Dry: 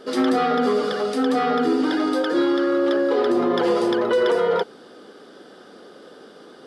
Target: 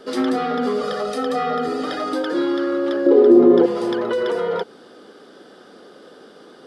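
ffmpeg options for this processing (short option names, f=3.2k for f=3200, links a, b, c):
-filter_complex "[0:a]asettb=1/sr,asplit=3[a][b][c];[a]atrim=end=0.814[d];[b]atrim=start=0.81:end=2.13,asetpts=PTS-STARTPTS,afade=t=in:d=0.004:c=qsin,afade=t=out:st=1.316:d=0.004:c=qsin,aecho=1:1:1.6:0.73,atrim=end_sample=58212[e];[c]atrim=start=2.126[f];[d][e]acrossfade=d=0.004:c1=hsin:c2=qsin[g];[g][f]acrossfade=d=0.004:c1=qsin:c2=hsin,asettb=1/sr,asplit=3[h][i][j];[h]atrim=end=3.064[k];[i]atrim=start=3.06:end=3.66,asetpts=PTS-STARTPTS,afade=t=in:d=0.004:c=qsin,afade=t=out:st=0.596:d=0.004:c=qsin,equalizer=f=390:t=o:w=1.6:g=15[l];[j]atrim=start=3.656[m];[k][l]acrossfade=d=0.004:c1=hsin:c2=qsin[n];[n][m]acrossfade=d=0.004:c1=qsin:c2=hsin,acrossover=split=330[o][p];[p]acompressor=threshold=-23dB:ratio=2[q];[o][q]amix=inputs=2:normalize=0"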